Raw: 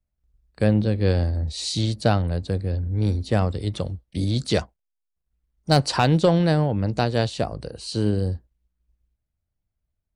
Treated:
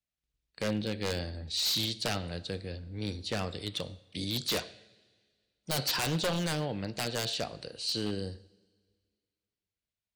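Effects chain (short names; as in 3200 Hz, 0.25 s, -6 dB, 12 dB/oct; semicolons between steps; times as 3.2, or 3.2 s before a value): weighting filter D; two-slope reverb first 0.65 s, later 2 s, from -16 dB, DRR 13.5 dB; wavefolder -14.5 dBFS; gain -9 dB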